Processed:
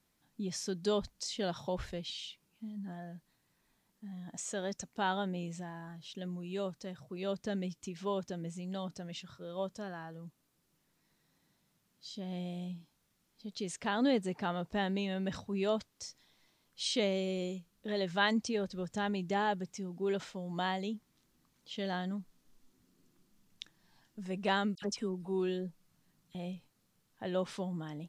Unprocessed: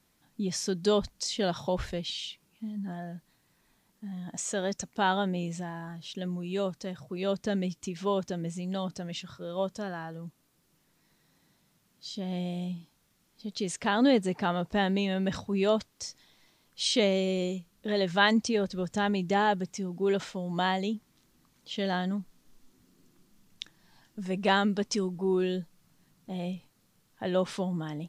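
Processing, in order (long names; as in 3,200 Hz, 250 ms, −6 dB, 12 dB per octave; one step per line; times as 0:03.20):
0:24.75–0:26.35: all-pass dispersion lows, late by 71 ms, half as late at 1,900 Hz
level −6.5 dB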